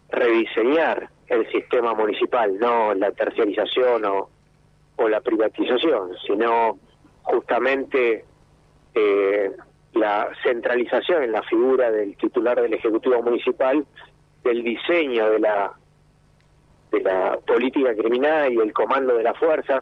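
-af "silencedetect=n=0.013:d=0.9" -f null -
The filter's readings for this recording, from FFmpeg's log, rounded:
silence_start: 15.74
silence_end: 16.93 | silence_duration: 1.18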